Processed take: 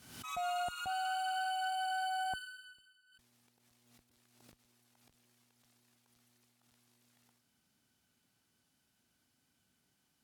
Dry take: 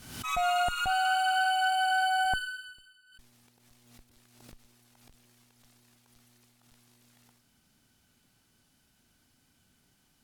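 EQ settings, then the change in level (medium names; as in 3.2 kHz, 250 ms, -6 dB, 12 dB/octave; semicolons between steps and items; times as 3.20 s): high-pass 53 Hz; dynamic bell 1.9 kHz, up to -6 dB, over -45 dBFS, Q 1.4; bass shelf 100 Hz -6.5 dB; -8.0 dB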